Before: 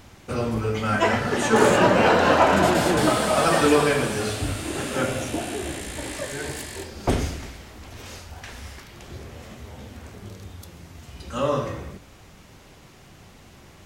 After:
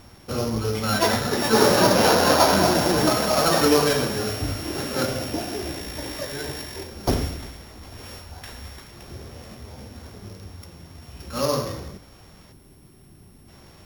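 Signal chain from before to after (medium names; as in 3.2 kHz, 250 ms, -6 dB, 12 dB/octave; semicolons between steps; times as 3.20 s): sorted samples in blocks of 8 samples; time-frequency box 12.52–13.49 s, 420–7900 Hz -9 dB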